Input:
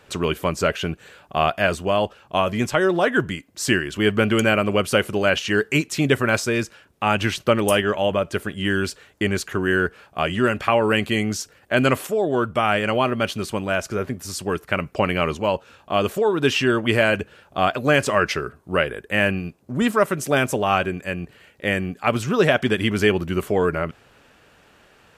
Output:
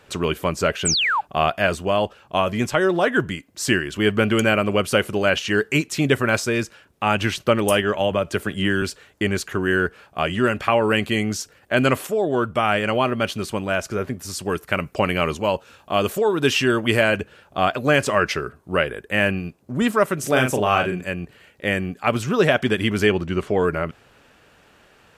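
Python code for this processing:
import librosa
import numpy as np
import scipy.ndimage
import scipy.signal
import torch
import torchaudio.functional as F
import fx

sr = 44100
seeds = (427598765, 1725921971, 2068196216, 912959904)

y = fx.spec_paint(x, sr, seeds[0], shape='fall', start_s=0.85, length_s=0.36, low_hz=770.0, high_hz=8800.0, level_db=-20.0)
y = fx.band_squash(y, sr, depth_pct=70, at=(8.0, 8.82))
y = fx.high_shelf(y, sr, hz=6000.0, db=6.5, at=(14.45, 17.01))
y = fx.doubler(y, sr, ms=39.0, db=-5.0, at=(20.2, 21.09))
y = fx.lowpass(y, sr, hz=fx.line((23.06, 9500.0), (23.57, 5100.0)), slope=12, at=(23.06, 23.57), fade=0.02)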